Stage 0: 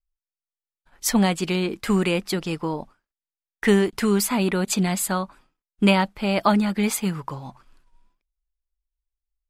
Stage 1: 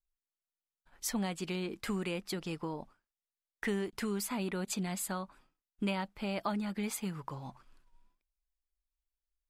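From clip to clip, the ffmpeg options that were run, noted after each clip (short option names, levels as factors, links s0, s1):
-af "acompressor=threshold=0.0251:ratio=2,volume=0.473"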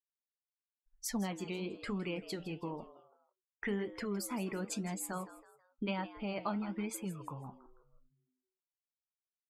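-filter_complex "[0:a]afftdn=nr=35:nf=-45,flanger=delay=6.5:depth=7.8:regen=-69:speed=1:shape=sinusoidal,asplit=4[s0][s1][s2][s3];[s1]adelay=162,afreqshift=120,volume=0.168[s4];[s2]adelay=324,afreqshift=240,volume=0.0638[s5];[s3]adelay=486,afreqshift=360,volume=0.0243[s6];[s0][s4][s5][s6]amix=inputs=4:normalize=0,volume=1.26"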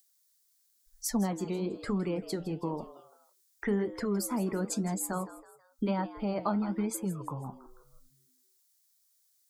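-filter_complex "[0:a]equalizer=f=2700:t=o:w=0.91:g=-14.5,acrossover=split=230|790|2200[s0][s1][s2][s3];[s3]acompressor=mode=upward:threshold=0.00112:ratio=2.5[s4];[s0][s1][s2][s4]amix=inputs=4:normalize=0,volume=2.24"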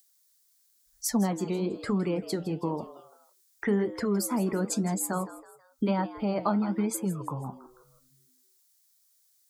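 -af "highpass=56,volume=1.5"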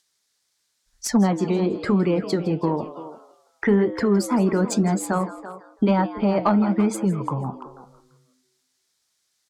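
-filter_complex "[0:a]adynamicsmooth=sensitivity=2:basefreq=5200,asplit=2[s0][s1];[s1]adelay=340,highpass=300,lowpass=3400,asoftclip=type=hard:threshold=0.075,volume=0.224[s2];[s0][s2]amix=inputs=2:normalize=0,asoftclip=type=tanh:threshold=0.188,volume=2.66"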